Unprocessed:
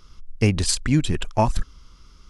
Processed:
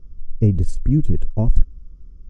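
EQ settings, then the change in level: tilt -3 dB/oct; band shelf 1900 Hz -14.5 dB 3 oct; high shelf 4900 Hz -8.5 dB; -5.0 dB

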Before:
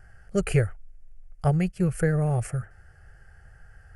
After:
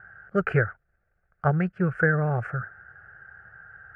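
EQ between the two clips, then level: HPF 120 Hz 12 dB/oct; synth low-pass 1500 Hz, resonance Q 5.8; 0.0 dB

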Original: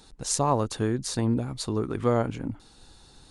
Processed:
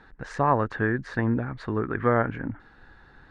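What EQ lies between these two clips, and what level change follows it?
synth low-pass 1700 Hz, resonance Q 5.7; 0.0 dB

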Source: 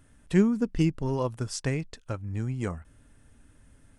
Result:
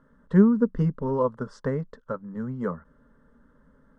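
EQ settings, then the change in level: LPF 1500 Hz 12 dB/oct; low shelf 110 Hz -12 dB; fixed phaser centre 490 Hz, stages 8; +8.0 dB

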